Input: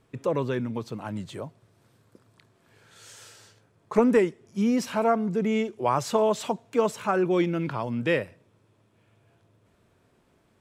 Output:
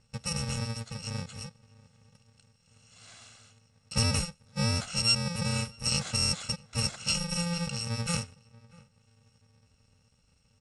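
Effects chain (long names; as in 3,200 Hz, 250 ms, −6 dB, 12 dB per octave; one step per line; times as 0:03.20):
samples in bit-reversed order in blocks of 128 samples
Butterworth low-pass 8,600 Hz 48 dB per octave
low-shelf EQ 120 Hz +5.5 dB
slap from a distant wall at 110 metres, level −23 dB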